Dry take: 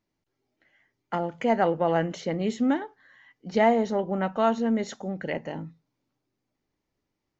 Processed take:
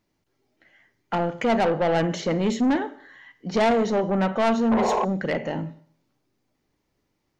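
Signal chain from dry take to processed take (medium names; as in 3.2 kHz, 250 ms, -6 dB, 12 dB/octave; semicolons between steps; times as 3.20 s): Schroeder reverb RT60 0.55 s, combs from 31 ms, DRR 13.5 dB; painted sound noise, 4.71–5.05 s, 350–1100 Hz -27 dBFS; saturation -23.5 dBFS, distortion -9 dB; trim +7 dB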